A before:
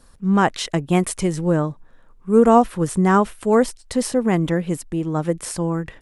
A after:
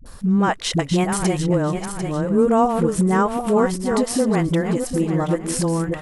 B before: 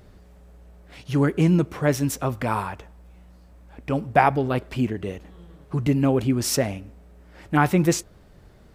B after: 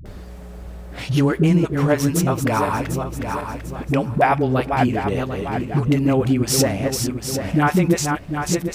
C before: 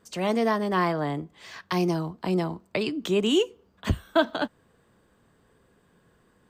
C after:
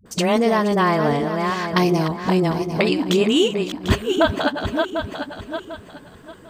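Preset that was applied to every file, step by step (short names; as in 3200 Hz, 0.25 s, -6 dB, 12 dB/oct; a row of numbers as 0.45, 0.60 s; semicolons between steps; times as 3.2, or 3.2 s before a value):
regenerating reverse delay 0.373 s, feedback 48%, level -8.5 dB; compressor 2:1, threshold -36 dBFS; dispersion highs, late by 58 ms, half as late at 330 Hz; match loudness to -20 LUFS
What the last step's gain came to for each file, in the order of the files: +11.0, +13.5, +14.5 dB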